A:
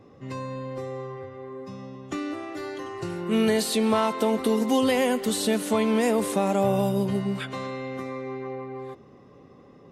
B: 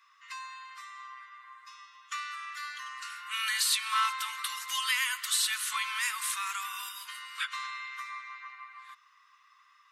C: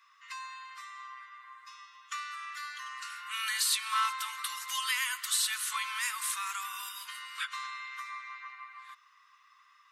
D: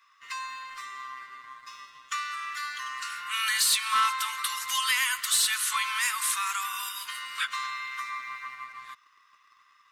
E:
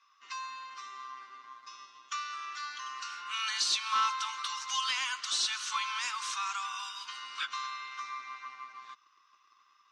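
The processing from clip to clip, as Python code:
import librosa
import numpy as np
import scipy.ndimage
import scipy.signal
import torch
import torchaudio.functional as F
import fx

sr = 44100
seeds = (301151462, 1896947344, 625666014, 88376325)

y1 = scipy.signal.sosfilt(scipy.signal.butter(12, 1100.0, 'highpass', fs=sr, output='sos'), x)
y1 = y1 * librosa.db_to_amplitude(2.5)
y2 = fx.dynamic_eq(y1, sr, hz=2600.0, q=0.72, threshold_db=-41.0, ratio=4.0, max_db=-3)
y3 = fx.leveller(y2, sr, passes=1)
y3 = y3 * librosa.db_to_amplitude(2.5)
y4 = fx.cabinet(y3, sr, low_hz=180.0, low_slope=24, high_hz=6000.0, hz=(350.0, 820.0, 1900.0, 5900.0), db=(6, 6, -9, 7))
y4 = y4 * librosa.db_to_amplitude(-4.0)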